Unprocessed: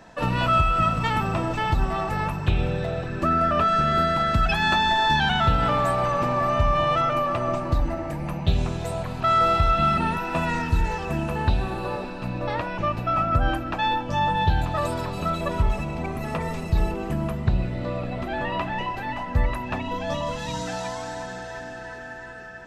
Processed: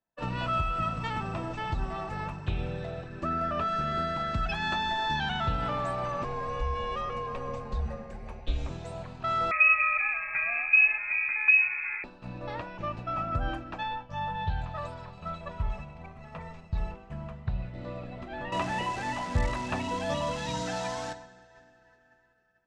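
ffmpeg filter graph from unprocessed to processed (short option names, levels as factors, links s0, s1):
-filter_complex "[0:a]asettb=1/sr,asplit=3[s0][s1][s2];[s0]atrim=end=6.244[s3];[s1]atrim=start=6.24:end=8.7,asetpts=PTS-STARTPTS,afade=t=in:d=0.004:c=qsin,afade=t=out:st=2.456:d=0.004:c=qsin,acrossover=split=350|3000[s4][s5][s6];[s5]acompressor=threshold=0.0501:ratio=1.5:attack=3.2:release=140:knee=2.83:detection=peak[s7];[s4][s7][s6]amix=inputs=3:normalize=0,afreqshift=-110[s8];[s2]atrim=start=8.696[s9];[s3][s8]acrossfade=d=0.004:c1=hsin:c2=qsin[s10];[s10][s9]acrossfade=d=0.004:c1=qsin:c2=hsin,asettb=1/sr,asplit=3[s11][s12][s13];[s11]atrim=end=9.514[s14];[s12]atrim=start=9.51:end=12.04,asetpts=PTS-STARTPTS,afade=t=in:d=0.004:c=qsin,afade=t=out:st=2.526:d=0.004:c=qsin,lowshelf=f=220:g=10,lowpass=f=2200:t=q:w=0.5098,lowpass=f=2200:t=q:w=0.6013,lowpass=f=2200:t=q:w=0.9,lowpass=f=2200:t=q:w=2.563,afreqshift=-2600[s15];[s13]atrim=start=12.036[s16];[s14][s15]acrossfade=d=0.004:c1=hsin:c2=qsin[s17];[s17][s16]acrossfade=d=0.004:c1=qsin:c2=hsin,asettb=1/sr,asplit=3[s18][s19][s20];[s18]atrim=end=13.834[s21];[s19]atrim=start=13.83:end=17.74,asetpts=PTS-STARTPTS,afade=t=in:d=0.004:c=qsin,afade=t=out:st=3.906:d=0.004:c=qsin,lowpass=f=3100:p=1,equalizer=f=320:t=o:w=0.9:g=-12.5[s22];[s20]atrim=start=17.736[s23];[s21][s22]acrossfade=d=0.004:c1=hsin:c2=qsin[s24];[s24][s23]acrossfade=d=0.004:c1=qsin:c2=hsin,asettb=1/sr,asplit=3[s25][s26][s27];[s25]atrim=end=18.524[s28];[s26]atrim=start=18.52:end=21.13,asetpts=PTS-STARTPTS,afade=t=in:d=0.004:c=qsin,afade=t=out:st=2.606:d=0.004:c=qsin,highpass=f=58:p=1,acontrast=63,acrusher=bits=6:dc=4:mix=0:aa=0.000001[s29];[s27]atrim=start=21.126[s30];[s28][s29]acrossfade=d=0.004:c1=hsin:c2=qsin[s31];[s31][s30]acrossfade=d=0.004:c1=qsin:c2=hsin,lowpass=f=7800:w=0.5412,lowpass=f=7800:w=1.3066,agate=range=0.0224:threshold=0.0501:ratio=3:detection=peak,volume=0.355"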